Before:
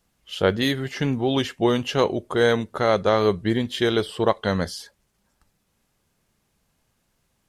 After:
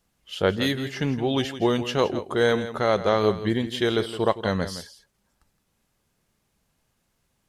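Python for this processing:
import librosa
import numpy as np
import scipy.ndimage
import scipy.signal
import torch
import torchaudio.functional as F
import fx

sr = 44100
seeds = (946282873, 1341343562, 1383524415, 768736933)

y = x + 10.0 ** (-12.5 / 20.0) * np.pad(x, (int(166 * sr / 1000.0), 0))[:len(x)]
y = F.gain(torch.from_numpy(y), -2.0).numpy()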